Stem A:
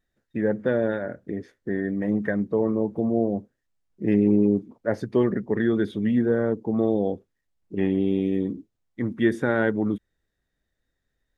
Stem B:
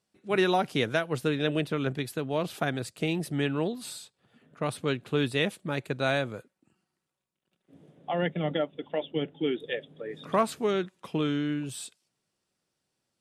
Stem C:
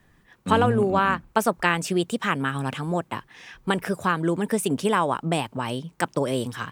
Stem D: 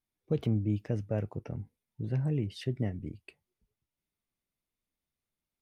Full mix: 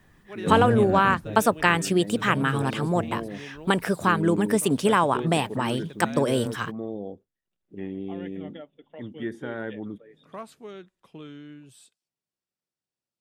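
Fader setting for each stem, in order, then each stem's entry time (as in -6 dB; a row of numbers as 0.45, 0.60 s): -11.0, -14.0, +1.5, -4.5 dB; 0.00, 0.00, 0.00, 0.15 s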